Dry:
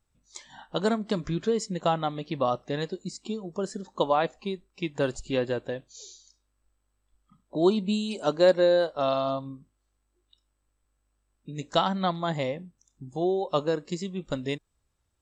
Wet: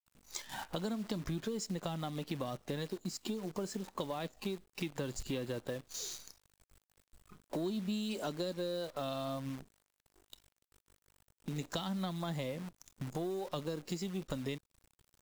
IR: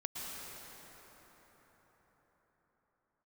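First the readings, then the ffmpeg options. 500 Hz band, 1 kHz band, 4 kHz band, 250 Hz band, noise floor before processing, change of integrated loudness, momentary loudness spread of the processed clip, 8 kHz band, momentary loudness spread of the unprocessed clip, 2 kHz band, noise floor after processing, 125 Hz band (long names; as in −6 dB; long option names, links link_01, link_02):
−14.0 dB, −14.5 dB, −8.0 dB, −8.5 dB, −76 dBFS, −12.0 dB, 8 LU, −1.5 dB, 16 LU, −11.0 dB, −84 dBFS, −6.0 dB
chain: -filter_complex "[0:a]acrossover=split=300|3000[link_01][link_02][link_03];[link_02]acompressor=threshold=-32dB:ratio=10[link_04];[link_01][link_04][link_03]amix=inputs=3:normalize=0,asplit=2[link_05][link_06];[link_06]asoftclip=type=tanh:threshold=-33dB,volume=-3dB[link_07];[link_05][link_07]amix=inputs=2:normalize=0,acrusher=bits=8:dc=4:mix=0:aa=0.000001,acompressor=threshold=-41dB:ratio=3,volume=2dB"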